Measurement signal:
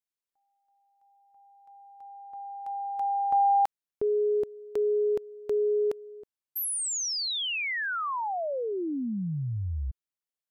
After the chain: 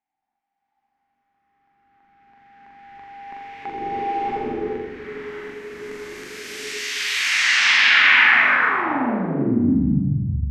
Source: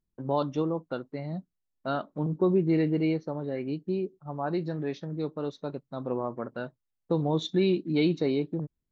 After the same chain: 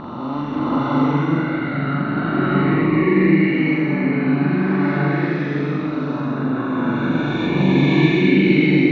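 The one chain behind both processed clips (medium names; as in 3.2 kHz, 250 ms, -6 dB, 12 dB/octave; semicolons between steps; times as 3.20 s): reverse spectral sustain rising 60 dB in 2.63 s; graphic EQ 250/500/2000/4000 Hz +11/-12/+12/-4 dB; in parallel at -5 dB: saturation -11.5 dBFS; on the sum: distance through air 200 m; on a send: flutter echo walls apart 7.2 m, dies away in 0.69 s; on the sum: swelling reverb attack 720 ms, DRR -8 dB; trim -7 dB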